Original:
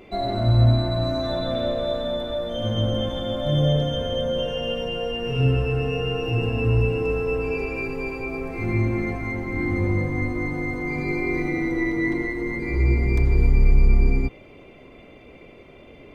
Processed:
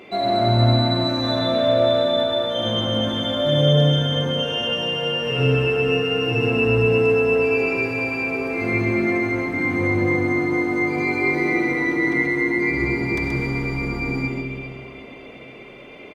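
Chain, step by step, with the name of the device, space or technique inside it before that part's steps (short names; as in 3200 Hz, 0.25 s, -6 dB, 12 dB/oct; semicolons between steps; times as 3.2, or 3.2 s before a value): PA in a hall (HPF 150 Hz 12 dB/oct; bell 2500 Hz +5 dB 2.9 oct; echo 0.129 s -5 dB; reverb RT60 3.5 s, pre-delay 48 ms, DRR 6 dB); gain +2 dB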